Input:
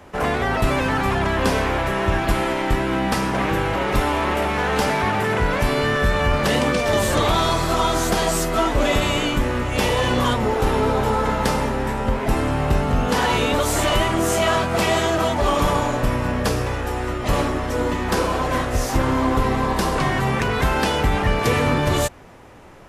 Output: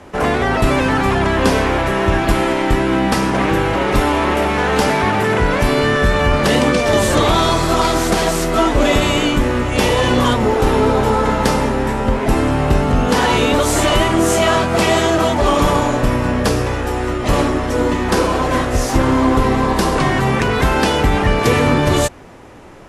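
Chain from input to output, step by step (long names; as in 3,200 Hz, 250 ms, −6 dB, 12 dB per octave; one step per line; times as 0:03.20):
0:07.81–0:08.49: phase distortion by the signal itself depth 0.17 ms
elliptic low-pass filter 12,000 Hz, stop band 40 dB
parametric band 310 Hz +3.5 dB 1.1 octaves
level +5 dB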